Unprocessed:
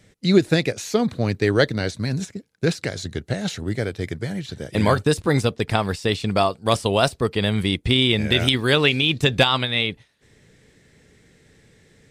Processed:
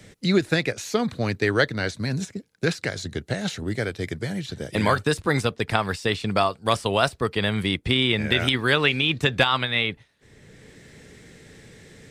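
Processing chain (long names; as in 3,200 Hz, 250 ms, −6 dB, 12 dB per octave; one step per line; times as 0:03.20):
dynamic equaliser 1,500 Hz, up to +7 dB, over −34 dBFS, Q 0.79
multiband upward and downward compressor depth 40%
level −4.5 dB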